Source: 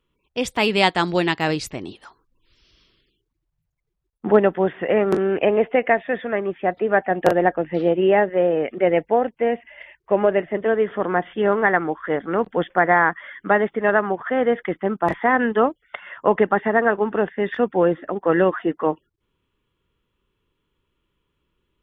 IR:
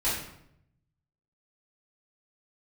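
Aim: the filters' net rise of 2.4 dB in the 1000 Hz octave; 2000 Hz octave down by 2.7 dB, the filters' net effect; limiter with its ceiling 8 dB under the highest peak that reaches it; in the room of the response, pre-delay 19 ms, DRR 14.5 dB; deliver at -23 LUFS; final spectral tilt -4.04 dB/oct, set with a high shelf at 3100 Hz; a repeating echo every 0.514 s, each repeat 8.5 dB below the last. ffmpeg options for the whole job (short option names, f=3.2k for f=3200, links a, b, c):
-filter_complex "[0:a]equalizer=f=1k:t=o:g=4,equalizer=f=2k:t=o:g=-7,highshelf=f=3.1k:g=7.5,alimiter=limit=-9dB:level=0:latency=1,aecho=1:1:514|1028|1542|2056:0.376|0.143|0.0543|0.0206,asplit=2[a][b];[1:a]atrim=start_sample=2205,adelay=19[c];[b][c]afir=irnorm=-1:irlink=0,volume=-24.5dB[d];[a][d]amix=inputs=2:normalize=0,volume=-1.5dB"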